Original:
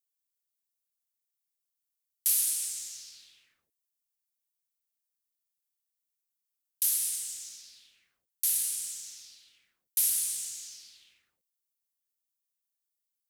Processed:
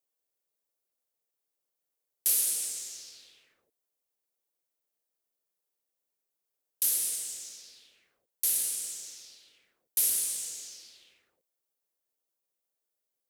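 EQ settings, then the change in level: peaking EQ 490 Hz +14 dB 1.7 oct; 0.0 dB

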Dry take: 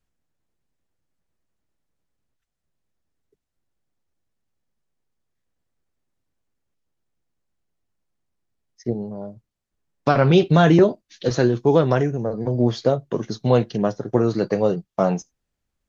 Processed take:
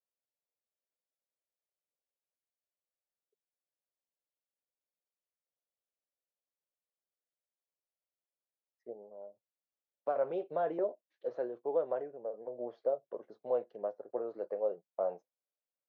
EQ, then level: ladder band-pass 630 Hz, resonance 55%; -7.0 dB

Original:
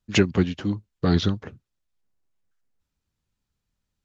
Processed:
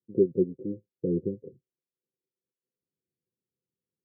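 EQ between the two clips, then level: high-pass 310 Hz 12 dB/octave; rippled Chebyshev low-pass 530 Hz, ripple 9 dB; +5.0 dB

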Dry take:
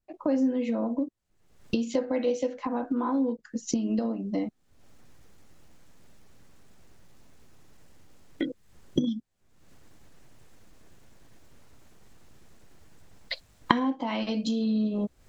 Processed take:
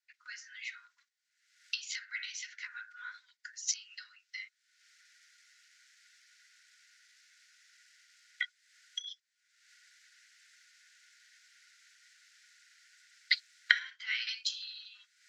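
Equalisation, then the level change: rippled Chebyshev high-pass 1.4 kHz, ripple 6 dB; distance through air 61 m; +9.0 dB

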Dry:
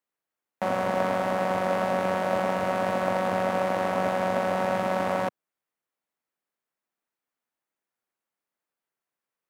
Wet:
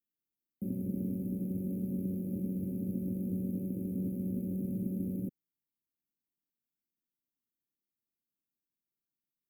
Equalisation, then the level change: inverse Chebyshev band-stop 620–7400 Hz, stop band 40 dB; brick-wall FIR band-stop 750–2100 Hz; 0.0 dB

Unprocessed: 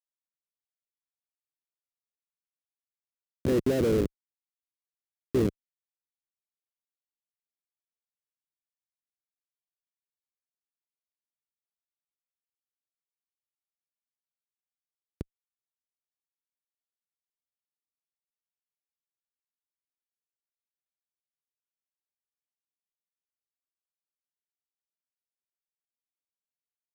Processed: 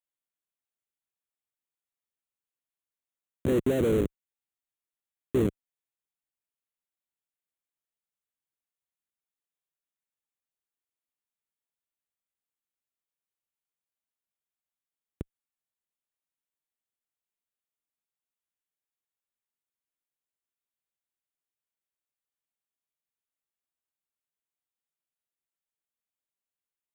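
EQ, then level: Butterworth band-stop 5 kHz, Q 1.9; 0.0 dB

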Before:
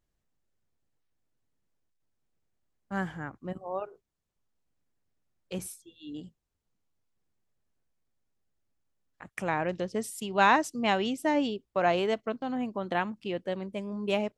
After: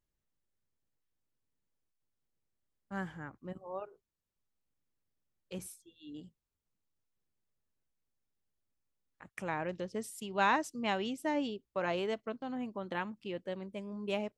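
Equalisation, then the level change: band-stop 710 Hz, Q 12; -6.5 dB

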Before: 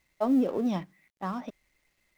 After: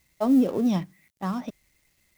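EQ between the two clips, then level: peaking EQ 100 Hz +9.5 dB 2.8 oct; treble shelf 4.1 kHz +11.5 dB; 0.0 dB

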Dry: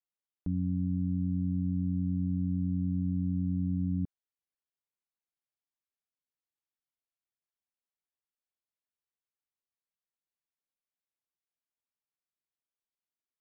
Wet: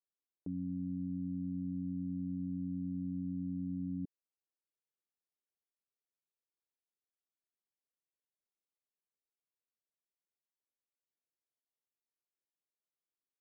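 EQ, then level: band-pass filter 400 Hz, Q 1.4; 0.0 dB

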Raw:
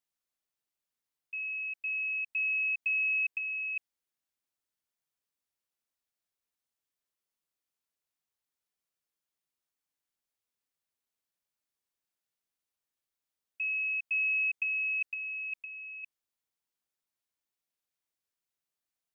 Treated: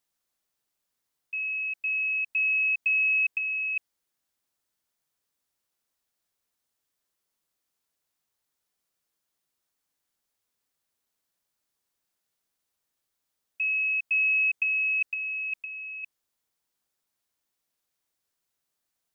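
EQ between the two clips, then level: peaking EQ 2.5 kHz -2.5 dB; +8.0 dB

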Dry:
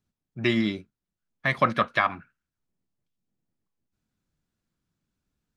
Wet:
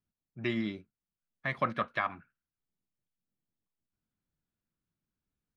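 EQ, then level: tone controls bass 0 dB, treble -8 dB; -8.5 dB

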